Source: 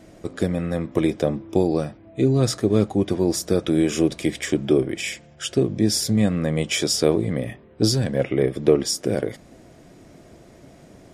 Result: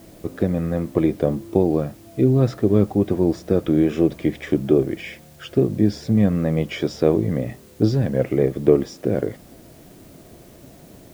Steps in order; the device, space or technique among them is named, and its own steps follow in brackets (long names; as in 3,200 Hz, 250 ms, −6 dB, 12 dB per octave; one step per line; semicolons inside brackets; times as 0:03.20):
cassette deck with a dirty head (head-to-tape spacing loss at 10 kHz 34 dB; tape wow and flutter; white noise bed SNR 33 dB)
level +3 dB